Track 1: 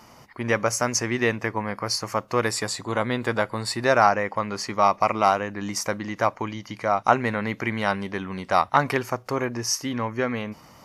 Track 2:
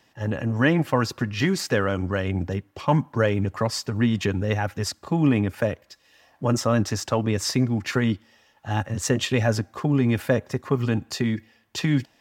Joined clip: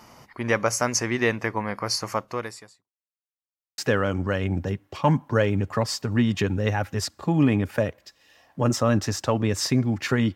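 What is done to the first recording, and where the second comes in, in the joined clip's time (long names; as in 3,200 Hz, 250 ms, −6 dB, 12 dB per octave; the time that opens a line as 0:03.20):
track 1
0:02.12–0:02.89: fade out quadratic
0:02.89–0:03.78: silence
0:03.78: continue with track 2 from 0:01.62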